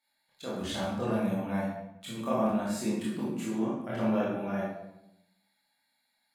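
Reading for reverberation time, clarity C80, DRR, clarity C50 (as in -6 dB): 0.85 s, 4.0 dB, -7.5 dB, 0.0 dB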